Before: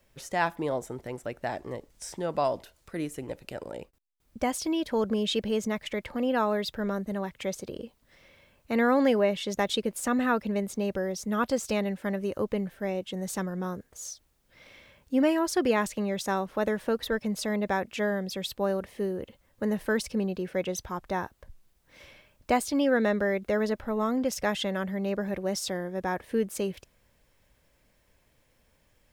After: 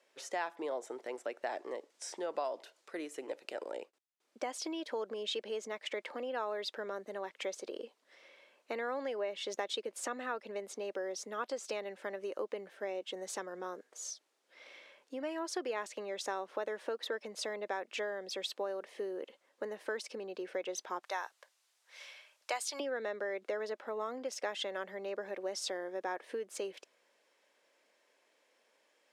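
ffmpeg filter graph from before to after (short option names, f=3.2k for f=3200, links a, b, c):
-filter_complex "[0:a]asettb=1/sr,asplit=3[a][b][c];[a]atrim=end=21.034[d];[b]atrim=start=21.03:end=22.8,asetpts=PTS-STARTPTS,afade=t=in:d=0.004:c=qsin,afade=t=out:st=1.766:d=0.004:c=qsin,highpass=750,highshelf=f=3.3k:g=8.5[e];[c]atrim=start=22.796[f];[d][e]acrossfade=d=0.004:c1=hsin:c2=qsin[g];[g][f]acrossfade=d=0.004:c1=qsin:c2=hsin,lowpass=7.6k,acompressor=threshold=-31dB:ratio=6,highpass=f=350:w=0.5412,highpass=f=350:w=1.3066,volume=-1.5dB"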